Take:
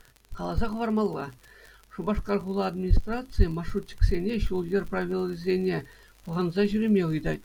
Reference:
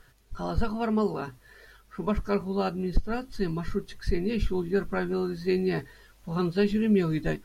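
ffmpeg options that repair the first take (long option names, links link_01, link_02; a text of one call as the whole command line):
ffmpeg -i in.wav -filter_complex "[0:a]adeclick=threshold=4,asplit=3[link_01][link_02][link_03];[link_01]afade=type=out:start_time=2.89:duration=0.02[link_04];[link_02]highpass=frequency=140:width=0.5412,highpass=frequency=140:width=1.3066,afade=type=in:start_time=2.89:duration=0.02,afade=type=out:start_time=3.01:duration=0.02[link_05];[link_03]afade=type=in:start_time=3.01:duration=0.02[link_06];[link_04][link_05][link_06]amix=inputs=3:normalize=0,asplit=3[link_07][link_08][link_09];[link_07]afade=type=out:start_time=3.37:duration=0.02[link_10];[link_08]highpass=frequency=140:width=0.5412,highpass=frequency=140:width=1.3066,afade=type=in:start_time=3.37:duration=0.02,afade=type=out:start_time=3.49:duration=0.02[link_11];[link_09]afade=type=in:start_time=3.49:duration=0.02[link_12];[link_10][link_11][link_12]amix=inputs=3:normalize=0,asplit=3[link_13][link_14][link_15];[link_13]afade=type=out:start_time=4:duration=0.02[link_16];[link_14]highpass=frequency=140:width=0.5412,highpass=frequency=140:width=1.3066,afade=type=in:start_time=4:duration=0.02,afade=type=out:start_time=4.12:duration=0.02[link_17];[link_15]afade=type=in:start_time=4.12:duration=0.02[link_18];[link_16][link_17][link_18]amix=inputs=3:normalize=0" out.wav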